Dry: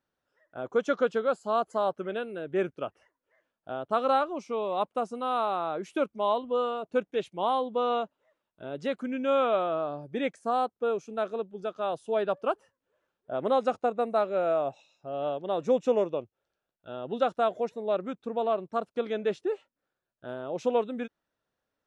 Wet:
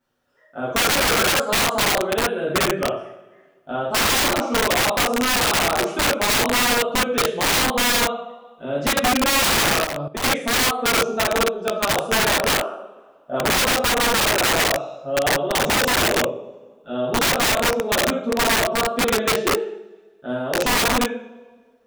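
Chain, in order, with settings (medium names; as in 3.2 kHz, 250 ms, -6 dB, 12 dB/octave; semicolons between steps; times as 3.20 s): two-slope reverb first 0.63 s, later 1.7 s, from -18 dB, DRR -8 dB; integer overflow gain 16.5 dB; 9.84–10.24 s: level held to a coarse grid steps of 15 dB; trim +3 dB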